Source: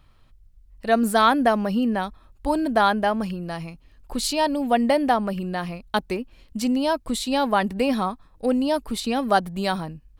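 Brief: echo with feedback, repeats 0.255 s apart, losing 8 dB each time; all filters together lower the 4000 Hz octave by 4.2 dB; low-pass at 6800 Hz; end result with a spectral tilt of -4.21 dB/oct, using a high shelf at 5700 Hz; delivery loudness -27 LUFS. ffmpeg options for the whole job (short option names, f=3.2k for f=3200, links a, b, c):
-af "lowpass=6.8k,equalizer=f=4k:t=o:g=-6.5,highshelf=f=5.7k:g=5,aecho=1:1:255|510|765|1020|1275:0.398|0.159|0.0637|0.0255|0.0102,volume=-4dB"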